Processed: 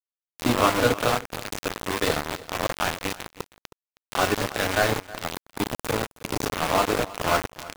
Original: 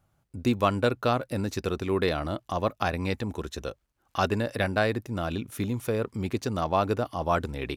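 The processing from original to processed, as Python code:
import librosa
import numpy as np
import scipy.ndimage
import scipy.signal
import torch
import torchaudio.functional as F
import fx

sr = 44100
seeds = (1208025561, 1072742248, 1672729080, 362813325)

p1 = fx.spec_swells(x, sr, rise_s=0.51)
p2 = fx.rev_fdn(p1, sr, rt60_s=0.54, lf_ratio=0.95, hf_ratio=0.55, size_ms=20.0, drr_db=1.5)
p3 = np.where(np.abs(p2) >= 10.0 ** (-19.0 / 20.0), p2, 0.0)
y = p3 + fx.echo_single(p3, sr, ms=317, db=-19.0, dry=0)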